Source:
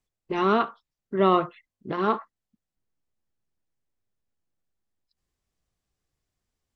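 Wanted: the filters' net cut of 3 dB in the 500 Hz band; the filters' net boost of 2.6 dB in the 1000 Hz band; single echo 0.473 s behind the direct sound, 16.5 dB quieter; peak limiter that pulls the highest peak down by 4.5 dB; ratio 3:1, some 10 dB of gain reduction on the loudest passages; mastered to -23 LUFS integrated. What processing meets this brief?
bell 500 Hz -5.5 dB; bell 1000 Hz +4.5 dB; compressor 3:1, threshold -28 dBFS; limiter -21 dBFS; echo 0.473 s -16.5 dB; gain +11.5 dB

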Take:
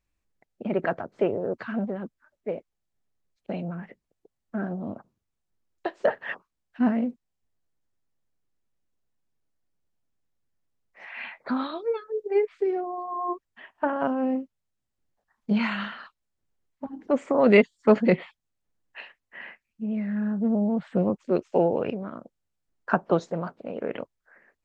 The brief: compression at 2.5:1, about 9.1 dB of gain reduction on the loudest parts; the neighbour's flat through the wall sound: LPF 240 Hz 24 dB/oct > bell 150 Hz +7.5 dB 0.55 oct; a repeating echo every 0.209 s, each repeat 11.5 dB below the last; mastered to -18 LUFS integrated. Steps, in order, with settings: compressor 2.5:1, threshold -26 dBFS; LPF 240 Hz 24 dB/oct; bell 150 Hz +7.5 dB 0.55 oct; feedback echo 0.209 s, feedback 27%, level -11.5 dB; gain +16 dB

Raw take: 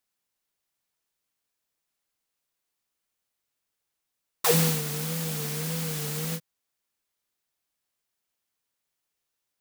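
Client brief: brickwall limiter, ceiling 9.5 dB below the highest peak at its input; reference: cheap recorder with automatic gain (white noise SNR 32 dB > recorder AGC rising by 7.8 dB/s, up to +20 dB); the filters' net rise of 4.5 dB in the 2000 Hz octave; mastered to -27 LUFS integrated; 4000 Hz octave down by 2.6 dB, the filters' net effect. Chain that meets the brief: bell 2000 Hz +7 dB; bell 4000 Hz -5.5 dB; limiter -18 dBFS; white noise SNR 32 dB; recorder AGC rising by 7.8 dB/s, up to +20 dB; gain +2 dB

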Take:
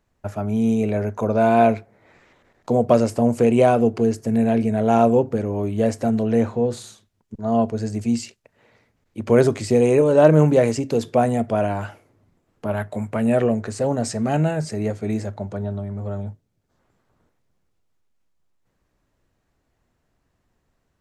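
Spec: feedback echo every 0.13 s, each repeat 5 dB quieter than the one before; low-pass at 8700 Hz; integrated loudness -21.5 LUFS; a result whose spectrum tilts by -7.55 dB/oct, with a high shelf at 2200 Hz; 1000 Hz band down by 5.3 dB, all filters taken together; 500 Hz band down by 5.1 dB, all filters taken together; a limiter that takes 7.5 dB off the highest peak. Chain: LPF 8700 Hz; bell 500 Hz -4.5 dB; bell 1000 Hz -4.5 dB; high shelf 2200 Hz -7 dB; limiter -12.5 dBFS; feedback echo 0.13 s, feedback 56%, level -5 dB; gain +1.5 dB

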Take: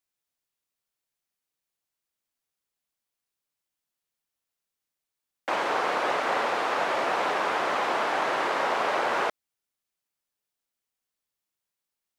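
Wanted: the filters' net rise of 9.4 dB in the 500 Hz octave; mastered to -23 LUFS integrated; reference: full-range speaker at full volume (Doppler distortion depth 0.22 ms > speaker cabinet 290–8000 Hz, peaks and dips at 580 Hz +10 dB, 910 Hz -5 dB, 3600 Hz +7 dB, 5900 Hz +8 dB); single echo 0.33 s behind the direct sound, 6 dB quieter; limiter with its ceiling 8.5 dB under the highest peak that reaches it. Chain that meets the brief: bell 500 Hz +4.5 dB; limiter -20.5 dBFS; echo 0.33 s -6 dB; Doppler distortion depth 0.22 ms; speaker cabinet 290–8000 Hz, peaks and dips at 580 Hz +10 dB, 910 Hz -5 dB, 3600 Hz +7 dB, 5900 Hz +8 dB; gain +3 dB

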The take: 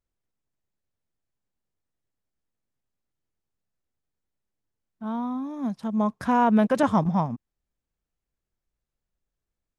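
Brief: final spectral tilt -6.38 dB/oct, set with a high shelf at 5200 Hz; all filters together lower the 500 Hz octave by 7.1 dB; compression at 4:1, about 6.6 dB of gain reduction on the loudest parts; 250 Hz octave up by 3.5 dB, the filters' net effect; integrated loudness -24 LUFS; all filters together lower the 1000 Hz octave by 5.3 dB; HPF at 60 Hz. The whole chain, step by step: HPF 60 Hz; bell 250 Hz +6 dB; bell 500 Hz -9 dB; bell 1000 Hz -4 dB; high shelf 5200 Hz +8.5 dB; compressor 4:1, threshold -21 dBFS; gain +3 dB

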